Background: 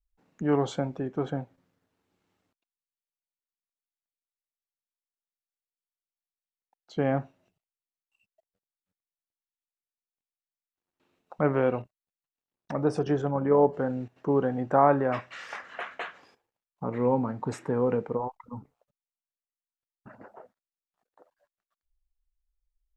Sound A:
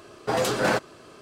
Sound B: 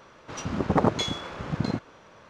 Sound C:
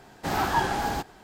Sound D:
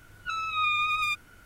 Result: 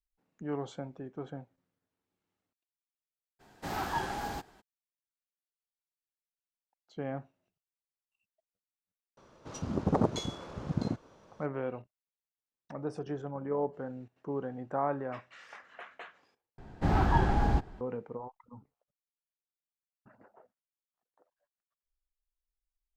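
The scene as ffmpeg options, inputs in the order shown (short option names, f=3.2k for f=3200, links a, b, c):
-filter_complex "[3:a]asplit=2[a][b];[0:a]volume=-11dB[c];[2:a]equalizer=f=2.1k:t=o:w=2:g=-10[d];[b]aemphasis=mode=reproduction:type=riaa[e];[c]asplit=2[f][g];[f]atrim=end=16.584[h];[e]atrim=end=1.23,asetpts=PTS-STARTPTS,volume=-5dB[i];[g]atrim=start=17.806[j];[a]atrim=end=1.23,asetpts=PTS-STARTPTS,volume=-9dB,afade=t=in:d=0.02,afade=t=out:st=1.21:d=0.02,adelay=3390[k];[d]atrim=end=2.29,asetpts=PTS-STARTPTS,volume=-4dB,afade=t=in:d=0.004:c=hsin,afade=t=out:st=2.286:d=0.004:c=hsin,adelay=9170[l];[h][i]acrossfade=d=0.004:c1=hsin:c2=hsin[m];[m][j]acrossfade=d=0.004:c1=hsin:c2=hsin[n];[n][k][l]amix=inputs=3:normalize=0"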